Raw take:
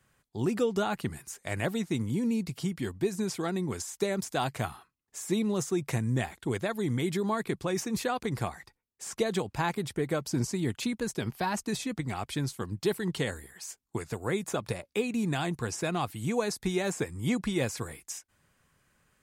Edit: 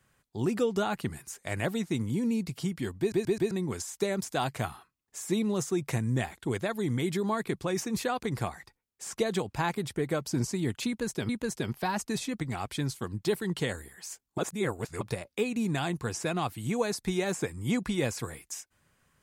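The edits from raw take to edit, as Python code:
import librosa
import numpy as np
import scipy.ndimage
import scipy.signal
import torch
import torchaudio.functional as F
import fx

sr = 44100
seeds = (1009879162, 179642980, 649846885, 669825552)

y = fx.edit(x, sr, fx.stutter_over(start_s=2.99, slice_s=0.13, count=4),
    fx.repeat(start_s=10.87, length_s=0.42, count=2),
    fx.reverse_span(start_s=13.96, length_s=0.63), tone=tone)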